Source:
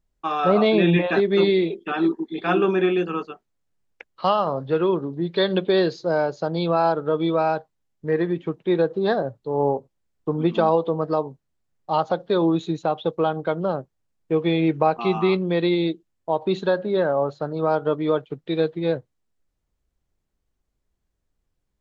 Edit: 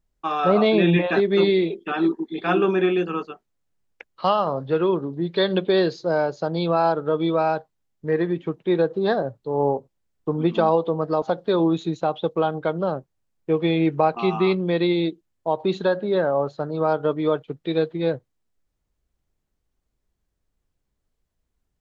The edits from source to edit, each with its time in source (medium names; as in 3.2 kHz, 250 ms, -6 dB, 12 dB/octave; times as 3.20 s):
11.22–12.04 s: delete